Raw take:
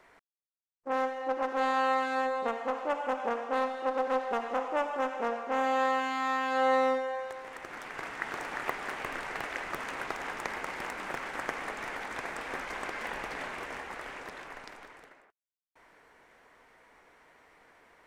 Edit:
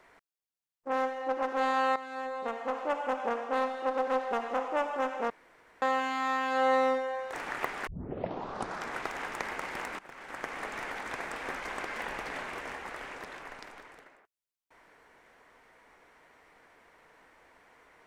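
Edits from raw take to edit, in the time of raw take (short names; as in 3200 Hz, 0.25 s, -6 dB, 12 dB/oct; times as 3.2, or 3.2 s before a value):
1.96–2.81 fade in, from -13.5 dB
5.3–5.82 room tone
7.33–8.38 cut
8.92 tape start 1.16 s
11.04–11.74 fade in linear, from -20 dB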